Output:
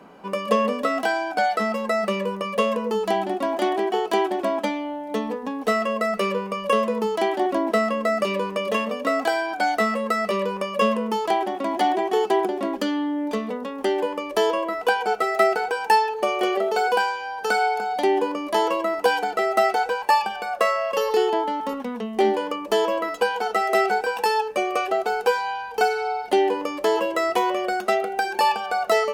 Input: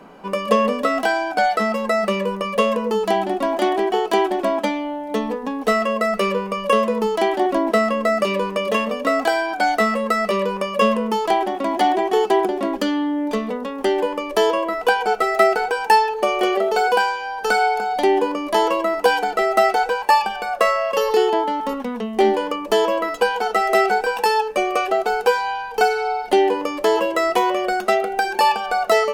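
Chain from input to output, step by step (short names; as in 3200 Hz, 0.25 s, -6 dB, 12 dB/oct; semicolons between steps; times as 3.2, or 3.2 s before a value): HPF 47 Hz 12 dB/oct; gain -3.5 dB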